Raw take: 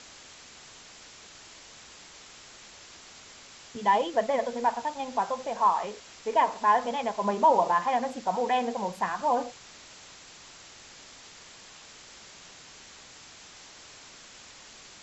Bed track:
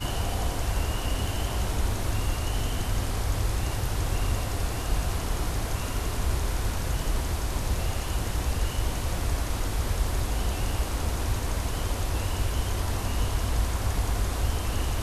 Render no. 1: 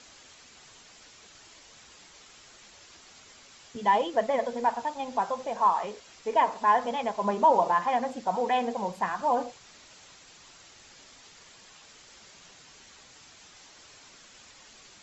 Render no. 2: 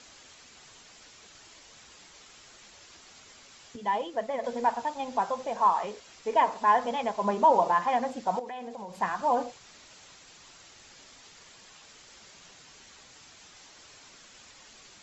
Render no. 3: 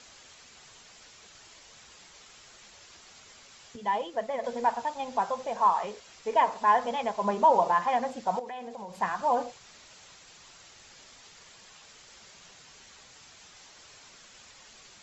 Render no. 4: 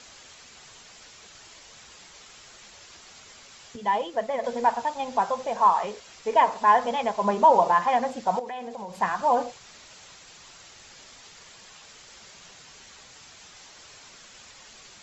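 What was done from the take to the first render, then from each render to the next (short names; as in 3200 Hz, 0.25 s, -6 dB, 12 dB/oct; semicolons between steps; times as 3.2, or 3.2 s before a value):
denoiser 6 dB, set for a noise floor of -50 dBFS
3.76–4.44 gain -5.5 dB; 8.39–8.99 compressor 5:1, threshold -37 dBFS
bell 290 Hz -4.5 dB 0.51 oct
gain +4 dB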